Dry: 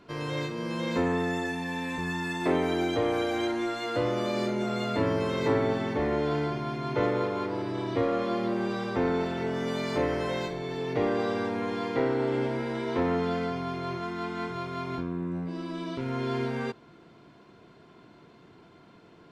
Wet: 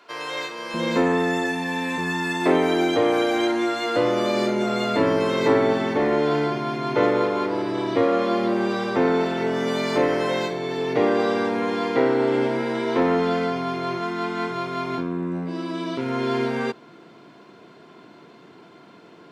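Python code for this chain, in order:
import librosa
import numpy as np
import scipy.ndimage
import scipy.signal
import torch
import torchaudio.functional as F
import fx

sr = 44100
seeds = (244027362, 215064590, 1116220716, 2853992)

y = fx.highpass(x, sr, hz=fx.steps((0.0, 670.0), (0.74, 190.0)), slope=12)
y = F.gain(torch.from_numpy(y), 7.5).numpy()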